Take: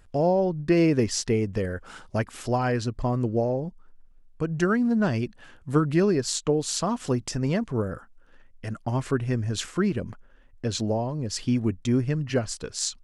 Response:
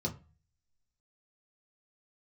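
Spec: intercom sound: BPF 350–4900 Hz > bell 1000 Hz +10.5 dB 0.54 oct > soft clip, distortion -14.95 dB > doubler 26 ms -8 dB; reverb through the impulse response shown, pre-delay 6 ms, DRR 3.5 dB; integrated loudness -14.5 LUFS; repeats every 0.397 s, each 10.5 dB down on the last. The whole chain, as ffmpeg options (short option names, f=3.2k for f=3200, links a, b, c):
-filter_complex "[0:a]aecho=1:1:397|794|1191:0.299|0.0896|0.0269,asplit=2[a][b];[1:a]atrim=start_sample=2205,adelay=6[c];[b][c]afir=irnorm=-1:irlink=0,volume=-6.5dB[d];[a][d]amix=inputs=2:normalize=0,highpass=350,lowpass=4.9k,equalizer=f=1k:t=o:w=0.54:g=10.5,asoftclip=threshold=-14.5dB,asplit=2[e][f];[f]adelay=26,volume=-8dB[g];[e][g]amix=inputs=2:normalize=0,volume=11dB"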